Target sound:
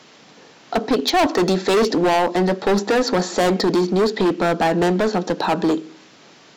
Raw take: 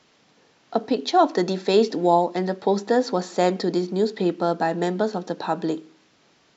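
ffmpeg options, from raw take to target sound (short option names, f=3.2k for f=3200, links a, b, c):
-filter_complex "[0:a]highpass=120,volume=22.5dB,asoftclip=hard,volume=-22.5dB,asplit=2[a][b];[b]acompressor=threshold=-36dB:ratio=6,volume=-1.5dB[c];[a][c]amix=inputs=2:normalize=0,volume=7dB"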